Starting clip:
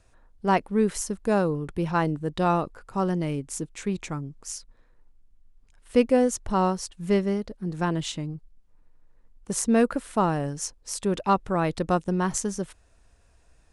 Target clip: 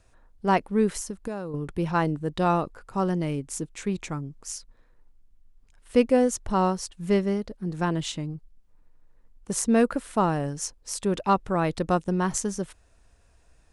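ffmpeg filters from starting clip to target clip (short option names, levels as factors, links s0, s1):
-filter_complex "[0:a]asettb=1/sr,asplit=3[s0][s1][s2];[s0]atrim=end=0.964[s3];[s1]atrim=start=0.96:end=1.54,asetpts=PTS-STARTPTS,afade=t=in:d=0.004:c=qsin,afade=t=out:st=0.576:d=0.004:c=qsin,acompressor=threshold=0.0316:ratio=8[s4];[s2]atrim=start=1.536[s5];[s3][s4]acrossfade=d=0.004:c1=hsin:c2=qsin[s6];[s6][s5]acrossfade=d=0.004:c1=qsin:c2=hsin"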